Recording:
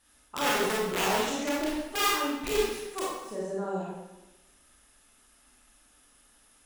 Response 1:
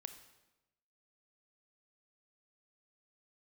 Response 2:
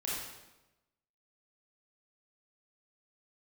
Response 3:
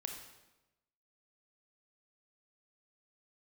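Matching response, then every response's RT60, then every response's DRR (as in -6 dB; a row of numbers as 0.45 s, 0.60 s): 2; 1.0 s, 1.0 s, 1.0 s; 8.5 dB, -6.5 dB, 3.0 dB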